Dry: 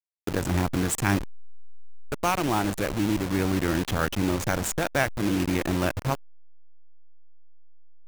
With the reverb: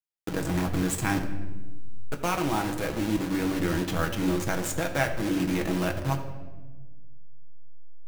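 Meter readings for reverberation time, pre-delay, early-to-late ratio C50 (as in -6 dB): 1.3 s, 6 ms, 9.0 dB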